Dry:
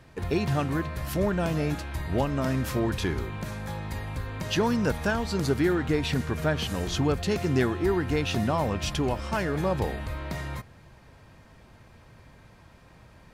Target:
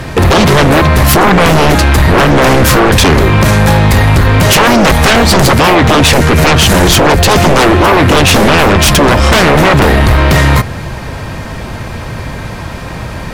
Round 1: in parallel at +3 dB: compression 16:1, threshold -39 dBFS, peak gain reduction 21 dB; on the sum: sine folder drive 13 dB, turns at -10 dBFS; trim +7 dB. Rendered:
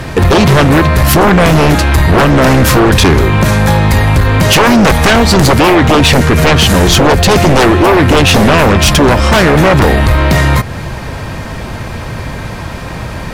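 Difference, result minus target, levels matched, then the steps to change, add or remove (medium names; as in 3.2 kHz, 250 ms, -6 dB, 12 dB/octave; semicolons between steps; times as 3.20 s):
compression: peak gain reduction +9 dB
change: compression 16:1, threshold -29.5 dBFS, peak gain reduction 12 dB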